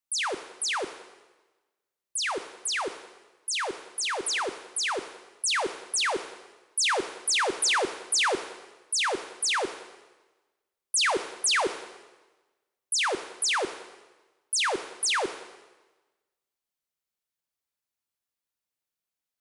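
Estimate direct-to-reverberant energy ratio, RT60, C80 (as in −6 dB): 10.0 dB, 1.2 s, 13.5 dB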